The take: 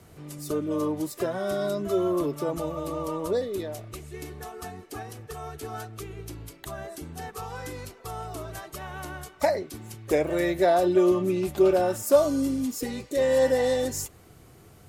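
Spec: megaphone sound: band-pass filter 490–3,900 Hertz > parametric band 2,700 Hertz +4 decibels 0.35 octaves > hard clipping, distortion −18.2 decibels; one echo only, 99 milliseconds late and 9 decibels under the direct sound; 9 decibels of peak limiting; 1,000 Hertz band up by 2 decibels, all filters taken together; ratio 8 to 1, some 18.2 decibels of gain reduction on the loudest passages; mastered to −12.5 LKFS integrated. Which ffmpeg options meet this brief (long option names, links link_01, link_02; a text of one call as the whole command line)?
ffmpeg -i in.wav -af "equalizer=frequency=1000:width_type=o:gain=4,acompressor=threshold=-31dB:ratio=8,alimiter=level_in=4dB:limit=-24dB:level=0:latency=1,volume=-4dB,highpass=490,lowpass=3900,equalizer=frequency=2700:width_type=o:width=0.35:gain=4,aecho=1:1:99:0.355,asoftclip=type=hard:threshold=-34dB,volume=28.5dB" out.wav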